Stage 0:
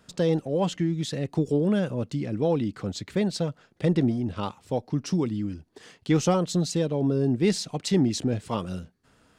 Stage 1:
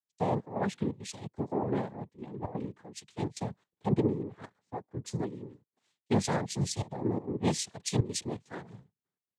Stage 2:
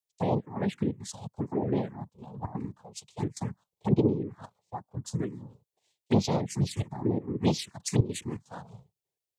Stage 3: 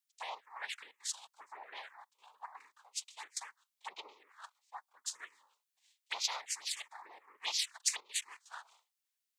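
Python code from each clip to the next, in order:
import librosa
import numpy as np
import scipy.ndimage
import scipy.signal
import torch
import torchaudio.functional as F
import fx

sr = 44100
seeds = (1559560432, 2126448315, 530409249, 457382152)

y1 = fx.noise_vocoder(x, sr, seeds[0], bands=6)
y1 = fx.step_gate(y1, sr, bpm=165, pattern='x.xxxxxxxx.xx', floor_db=-12.0, edge_ms=4.5)
y1 = fx.band_widen(y1, sr, depth_pct=100)
y1 = y1 * librosa.db_to_amplitude(-8.0)
y2 = fx.env_phaser(y1, sr, low_hz=220.0, high_hz=1700.0, full_db=-25.0)
y2 = y2 * librosa.db_to_amplitude(4.0)
y3 = scipy.signal.sosfilt(scipy.signal.butter(4, 1200.0, 'highpass', fs=sr, output='sos'), y2)
y3 = y3 * librosa.db_to_amplitude(3.0)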